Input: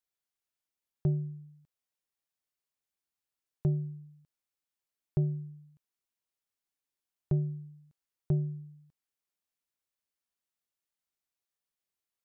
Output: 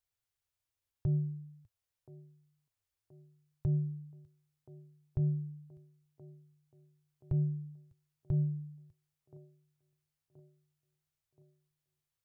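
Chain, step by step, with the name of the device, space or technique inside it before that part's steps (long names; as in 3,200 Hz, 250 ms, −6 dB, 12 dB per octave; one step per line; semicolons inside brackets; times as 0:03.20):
car stereo with a boomy subwoofer (low shelf with overshoot 140 Hz +9.5 dB, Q 3; brickwall limiter −24.5 dBFS, peak gain reduction 11.5 dB)
delay with a band-pass on its return 1,026 ms, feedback 53%, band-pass 470 Hz, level −12 dB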